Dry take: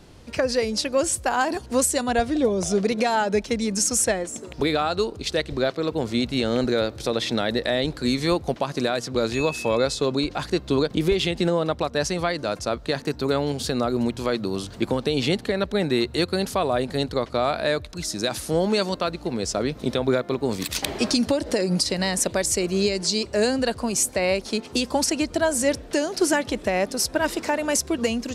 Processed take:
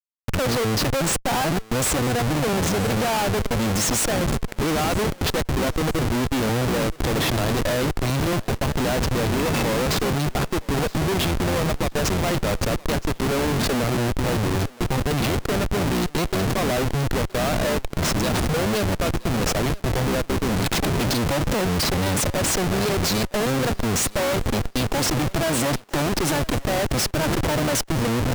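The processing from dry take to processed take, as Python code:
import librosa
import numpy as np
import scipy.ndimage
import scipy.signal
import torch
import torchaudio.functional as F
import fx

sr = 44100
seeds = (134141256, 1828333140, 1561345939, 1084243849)

y = fx.octave_divider(x, sr, octaves=1, level_db=2.0)
y = scipy.signal.sosfilt(scipy.signal.butter(2, 110.0, 'highpass', fs=sr, output='sos'), y)
y = fx.schmitt(y, sr, flips_db=-28.0)
y = fx.vibrato(y, sr, rate_hz=1.5, depth_cents=32.0)
y = fx.echo_thinned(y, sr, ms=970, feedback_pct=26, hz=420.0, wet_db=-20)
y = y * 10.0 ** (1.5 / 20.0)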